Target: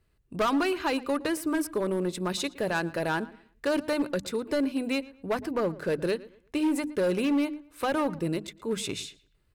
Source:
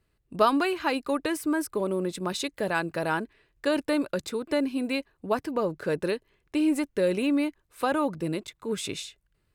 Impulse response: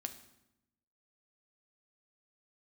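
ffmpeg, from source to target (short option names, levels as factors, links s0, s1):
-filter_complex "[0:a]lowshelf=f=130:g=5,bandreject=f=50:t=h:w=6,bandreject=f=100:t=h:w=6,bandreject=f=150:t=h:w=6,bandreject=f=200:t=h:w=6,bandreject=f=250:t=h:w=6,bandreject=f=300:t=h:w=6,volume=11.9,asoftclip=hard,volume=0.0841,asplit=2[s0][s1];[s1]adelay=115,lowpass=f=3300:p=1,volume=0.112,asplit=2[s2][s3];[s3]adelay=115,lowpass=f=3300:p=1,volume=0.3,asplit=2[s4][s5];[s5]adelay=115,lowpass=f=3300:p=1,volume=0.3[s6];[s2][s4][s6]amix=inputs=3:normalize=0[s7];[s0][s7]amix=inputs=2:normalize=0"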